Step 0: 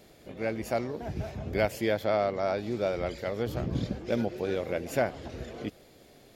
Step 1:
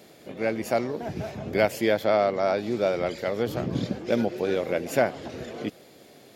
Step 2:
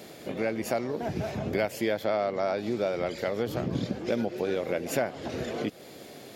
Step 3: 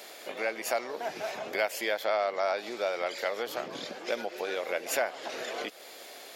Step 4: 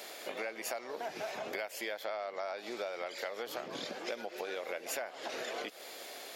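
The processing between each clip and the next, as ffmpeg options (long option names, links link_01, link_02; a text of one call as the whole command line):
ffmpeg -i in.wav -af "highpass=140,volume=5dB" out.wav
ffmpeg -i in.wav -af "acompressor=threshold=-35dB:ratio=2.5,volume=5.5dB" out.wav
ffmpeg -i in.wav -af "highpass=720,volume=3.5dB" out.wav
ffmpeg -i in.wav -af "acompressor=threshold=-36dB:ratio=5" out.wav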